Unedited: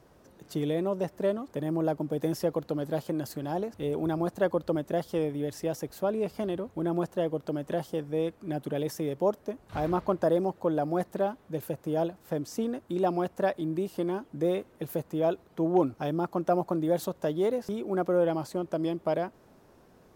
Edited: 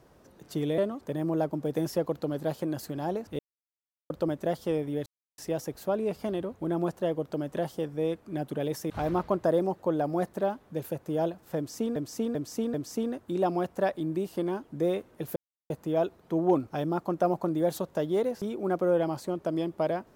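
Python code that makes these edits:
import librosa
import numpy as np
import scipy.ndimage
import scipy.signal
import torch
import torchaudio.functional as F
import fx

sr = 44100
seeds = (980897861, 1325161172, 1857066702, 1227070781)

y = fx.edit(x, sr, fx.cut(start_s=0.78, length_s=0.47),
    fx.silence(start_s=3.86, length_s=0.71),
    fx.insert_silence(at_s=5.53, length_s=0.32),
    fx.cut(start_s=9.05, length_s=0.63),
    fx.repeat(start_s=12.35, length_s=0.39, count=4),
    fx.insert_silence(at_s=14.97, length_s=0.34), tone=tone)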